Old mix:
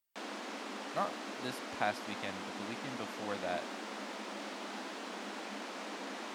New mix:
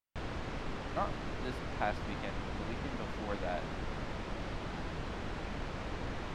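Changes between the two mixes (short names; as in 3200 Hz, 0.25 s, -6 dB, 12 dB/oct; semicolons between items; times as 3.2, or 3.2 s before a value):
background: remove rippled Chebyshev high-pass 200 Hz, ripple 3 dB; master: add LPF 2100 Hz 6 dB/oct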